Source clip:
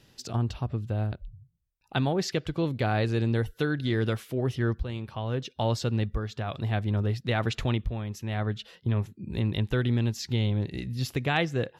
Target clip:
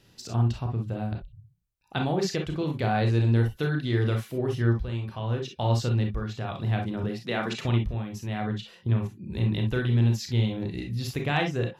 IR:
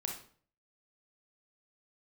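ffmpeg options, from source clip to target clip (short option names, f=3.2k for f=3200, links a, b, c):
-filter_complex "[0:a]asettb=1/sr,asplit=3[a][b][c];[a]atrim=end=7.034[d];[b]atrim=start=7.03:end=7.65,asetpts=PTS-STARTPTS,afade=t=in:d=0.004:c=qsin,afade=t=out:st=0.616:d=0.004:c=qsin,highpass=f=170:w=0.5412,highpass=f=170:w=1.3066[e];[c]atrim=start=7.646[f];[d][e]acrossfade=d=0.004:c1=hsin:c2=qsin[g];[g][f]acrossfade=d=0.004:c1=qsin:c2=hsin[h];[1:a]atrim=start_sample=2205,atrim=end_sample=3087[i];[h][i]afir=irnorm=-1:irlink=0"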